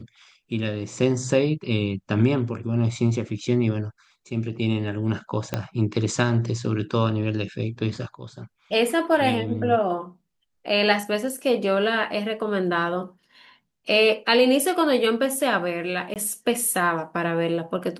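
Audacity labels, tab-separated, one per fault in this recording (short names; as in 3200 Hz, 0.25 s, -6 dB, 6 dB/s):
5.540000	5.540000	pop -10 dBFS
16.140000	16.160000	gap 18 ms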